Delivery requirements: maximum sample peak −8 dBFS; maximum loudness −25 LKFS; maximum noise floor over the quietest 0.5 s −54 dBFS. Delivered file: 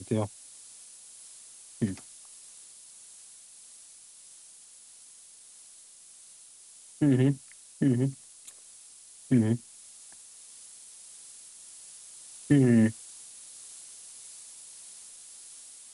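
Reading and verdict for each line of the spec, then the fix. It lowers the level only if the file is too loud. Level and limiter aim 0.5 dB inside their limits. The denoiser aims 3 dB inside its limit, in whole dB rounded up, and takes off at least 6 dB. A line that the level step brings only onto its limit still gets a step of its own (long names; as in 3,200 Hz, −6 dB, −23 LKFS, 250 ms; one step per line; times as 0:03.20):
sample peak −11.0 dBFS: in spec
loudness −27.0 LKFS: in spec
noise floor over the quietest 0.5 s −53 dBFS: out of spec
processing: broadband denoise 6 dB, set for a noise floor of −53 dBFS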